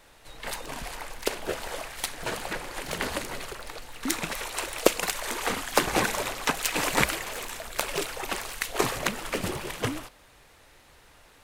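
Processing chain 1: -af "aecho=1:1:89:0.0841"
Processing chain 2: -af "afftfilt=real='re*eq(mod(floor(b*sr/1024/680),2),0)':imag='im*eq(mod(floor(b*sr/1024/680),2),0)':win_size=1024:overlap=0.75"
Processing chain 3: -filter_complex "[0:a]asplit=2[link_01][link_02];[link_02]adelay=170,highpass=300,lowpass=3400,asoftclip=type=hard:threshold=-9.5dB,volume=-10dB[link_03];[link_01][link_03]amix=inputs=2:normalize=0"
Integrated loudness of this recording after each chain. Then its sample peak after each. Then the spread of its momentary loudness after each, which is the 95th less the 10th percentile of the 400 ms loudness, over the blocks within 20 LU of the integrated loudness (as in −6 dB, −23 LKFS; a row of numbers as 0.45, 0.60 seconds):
−29.5, −32.5, −29.5 LKFS; −1.5, −2.5, −1.0 dBFS; 12, 12, 12 LU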